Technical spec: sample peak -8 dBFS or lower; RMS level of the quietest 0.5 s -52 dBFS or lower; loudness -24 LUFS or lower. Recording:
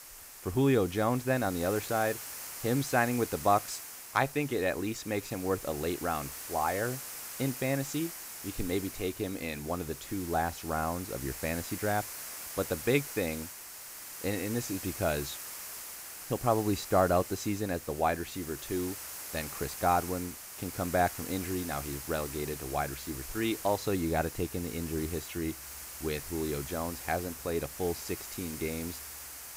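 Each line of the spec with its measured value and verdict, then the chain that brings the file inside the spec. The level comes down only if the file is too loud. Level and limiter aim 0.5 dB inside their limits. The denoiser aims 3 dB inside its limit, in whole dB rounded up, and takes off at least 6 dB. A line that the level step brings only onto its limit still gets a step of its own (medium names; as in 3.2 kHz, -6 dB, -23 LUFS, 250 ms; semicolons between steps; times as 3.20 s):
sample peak -10.5 dBFS: pass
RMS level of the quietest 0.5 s -46 dBFS: fail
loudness -32.5 LUFS: pass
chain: noise reduction 9 dB, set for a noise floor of -46 dBFS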